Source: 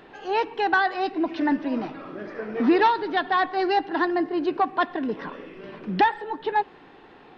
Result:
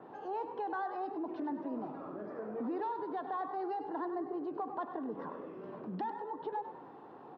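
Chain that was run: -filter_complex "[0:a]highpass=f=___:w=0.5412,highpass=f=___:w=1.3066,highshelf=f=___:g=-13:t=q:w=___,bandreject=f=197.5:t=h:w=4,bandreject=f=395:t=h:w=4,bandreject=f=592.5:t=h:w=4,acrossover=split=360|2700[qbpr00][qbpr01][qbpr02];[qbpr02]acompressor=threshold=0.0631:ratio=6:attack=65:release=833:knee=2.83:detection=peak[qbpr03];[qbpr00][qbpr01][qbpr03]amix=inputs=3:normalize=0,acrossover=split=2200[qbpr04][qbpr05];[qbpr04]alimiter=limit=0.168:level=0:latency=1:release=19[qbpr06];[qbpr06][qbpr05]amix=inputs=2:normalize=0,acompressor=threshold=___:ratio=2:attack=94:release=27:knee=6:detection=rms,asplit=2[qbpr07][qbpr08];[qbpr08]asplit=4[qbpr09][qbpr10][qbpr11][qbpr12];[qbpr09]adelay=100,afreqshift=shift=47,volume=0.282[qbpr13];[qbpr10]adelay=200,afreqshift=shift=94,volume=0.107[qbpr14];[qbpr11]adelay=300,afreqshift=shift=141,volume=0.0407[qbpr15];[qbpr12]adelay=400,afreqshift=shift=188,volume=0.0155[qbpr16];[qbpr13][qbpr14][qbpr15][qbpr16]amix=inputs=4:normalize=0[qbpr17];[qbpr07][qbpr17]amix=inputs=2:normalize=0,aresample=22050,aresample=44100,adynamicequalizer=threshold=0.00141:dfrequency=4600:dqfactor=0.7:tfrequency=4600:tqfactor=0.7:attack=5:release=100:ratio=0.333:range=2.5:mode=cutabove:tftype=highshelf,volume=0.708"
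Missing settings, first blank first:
100, 100, 1500, 1.5, 0.00398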